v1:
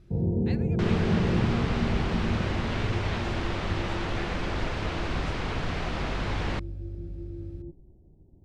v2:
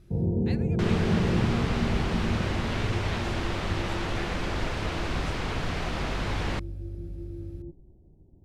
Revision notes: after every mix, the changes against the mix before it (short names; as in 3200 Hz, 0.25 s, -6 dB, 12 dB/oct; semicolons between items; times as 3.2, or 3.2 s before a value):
master: remove air absorption 53 m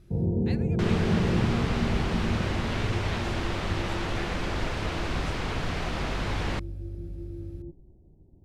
none